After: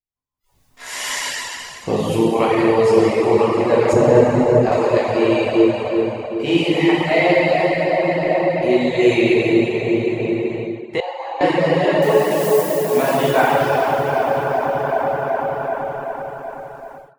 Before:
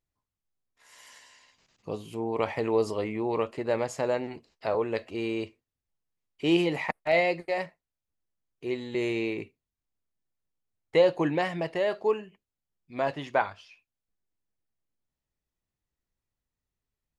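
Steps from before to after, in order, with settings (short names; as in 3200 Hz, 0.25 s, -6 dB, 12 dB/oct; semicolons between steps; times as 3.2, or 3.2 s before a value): 12.02–13.13 switching spikes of -31 dBFS; dark delay 0.38 s, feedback 61%, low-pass 1300 Hz, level -6.5 dB; in parallel at +3 dB: compressor, threshold -34 dBFS, peak gain reduction 16.5 dB; on the sum: plate-style reverb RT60 3.7 s, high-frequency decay 0.95×, DRR -9 dB; AGC gain up to 16 dB; reverb removal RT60 0.52 s; 3.93–4.72 tilt -2.5 dB/oct; 11–11.41 ladder high-pass 740 Hz, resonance 80%; spectral noise reduction 22 dB; gain -1.5 dB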